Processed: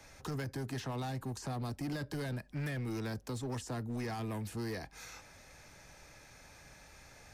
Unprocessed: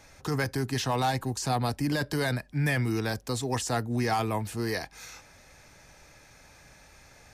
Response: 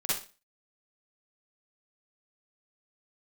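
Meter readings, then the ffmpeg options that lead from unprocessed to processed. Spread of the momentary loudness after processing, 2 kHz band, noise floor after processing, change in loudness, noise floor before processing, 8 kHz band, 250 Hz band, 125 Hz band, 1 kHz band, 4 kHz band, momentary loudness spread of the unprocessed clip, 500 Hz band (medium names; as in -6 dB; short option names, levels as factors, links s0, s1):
17 LU, -12.5 dB, -58 dBFS, -10.5 dB, -55 dBFS, -12.0 dB, -8.5 dB, -8.5 dB, -14.0 dB, -12.5 dB, 6 LU, -10.5 dB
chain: -filter_complex "[0:a]acrossover=split=140|340|1900[s0][s1][s2][s3];[s0]acompressor=threshold=0.00891:ratio=4[s4];[s1]acompressor=threshold=0.0178:ratio=4[s5];[s2]acompressor=threshold=0.00891:ratio=4[s6];[s3]acompressor=threshold=0.00447:ratio=4[s7];[s4][s5][s6][s7]amix=inputs=4:normalize=0,asplit=2[s8][s9];[s9]aeval=exprs='0.0211*(abs(mod(val(0)/0.0211+3,4)-2)-1)':c=same,volume=0.562[s10];[s8][s10]amix=inputs=2:normalize=0,volume=0.501"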